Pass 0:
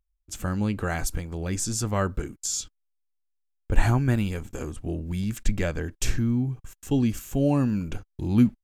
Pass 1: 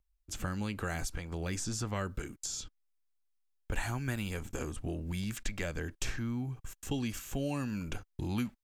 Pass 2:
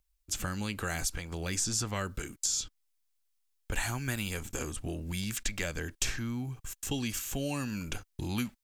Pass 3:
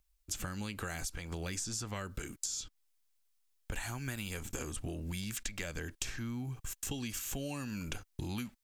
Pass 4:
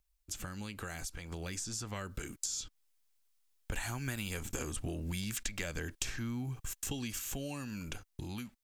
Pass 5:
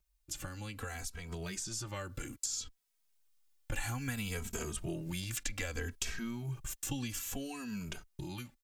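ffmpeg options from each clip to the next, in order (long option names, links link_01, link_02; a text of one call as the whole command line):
ffmpeg -i in.wav -filter_complex "[0:a]acrossover=split=630|1600|5800[link_01][link_02][link_03][link_04];[link_01]acompressor=threshold=-35dB:ratio=4[link_05];[link_02]acompressor=threshold=-45dB:ratio=4[link_06];[link_03]acompressor=threshold=-41dB:ratio=4[link_07];[link_04]acompressor=threshold=-47dB:ratio=4[link_08];[link_05][link_06][link_07][link_08]amix=inputs=4:normalize=0" out.wav
ffmpeg -i in.wav -af "highshelf=frequency=2300:gain=9" out.wav
ffmpeg -i in.wav -af "acompressor=threshold=-37dB:ratio=6,volume=1.5dB" out.wav
ffmpeg -i in.wav -af "dynaudnorm=framelen=590:gausssize=7:maxgain=4.5dB,volume=-3dB" out.wav
ffmpeg -i in.wav -filter_complex "[0:a]asplit=2[link_01][link_02];[link_02]adelay=2.8,afreqshift=-0.62[link_03];[link_01][link_03]amix=inputs=2:normalize=1,volume=3dB" out.wav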